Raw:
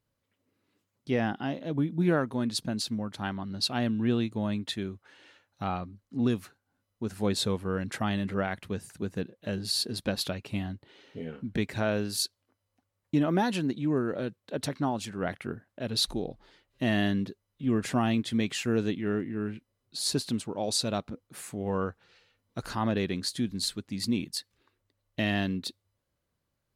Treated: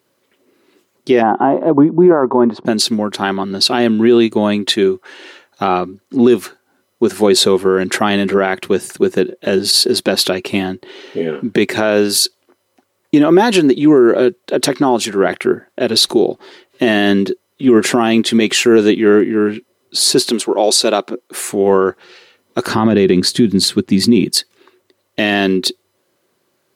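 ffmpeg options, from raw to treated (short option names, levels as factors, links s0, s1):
-filter_complex "[0:a]asplit=3[s0][s1][s2];[s0]afade=t=out:st=1.21:d=0.02[s3];[s1]lowpass=f=970:t=q:w=2.9,afade=t=in:st=1.21:d=0.02,afade=t=out:st=2.65:d=0.02[s4];[s2]afade=t=in:st=2.65:d=0.02[s5];[s3][s4][s5]amix=inputs=3:normalize=0,asettb=1/sr,asplit=3[s6][s7][s8];[s6]atrim=end=20.294[s9];[s7]atrim=start=20.29:end=21.5,asetpts=PTS-STARTPTS,afade=t=in:d=0.004:c=qsin,afade=t=out:st=1.206:d=0.004:c=qsin,highpass=280[s10];[s8]atrim=start=21.496[s11];[s9][s10]acrossfade=d=0.004:c1=hsin:c2=qsin[s12];[s12][s11]acrossfade=d=0.004:c1=qsin:c2=hsin,asettb=1/sr,asplit=3[s13][s14][s15];[s13]atrim=end=22.674[s16];[s14]atrim=start=22.67:end=24.3,asetpts=PTS-STARTPTS,afade=t=in:d=0.004:c=qsin,afade=t=out:st=1.626:d=0.004:c=qsin,bass=f=250:g=13,treble=f=4000:g=-4[s17];[s15]atrim=start=24.296[s18];[s16][s17]acrossfade=d=0.004:c1=hsin:c2=qsin[s19];[s19][s18]acrossfade=d=0.004:c1=qsin:c2=hsin,highpass=260,equalizer=f=370:w=6.3:g=11.5,alimiter=level_in=10.6:limit=0.891:release=50:level=0:latency=1,volume=0.891"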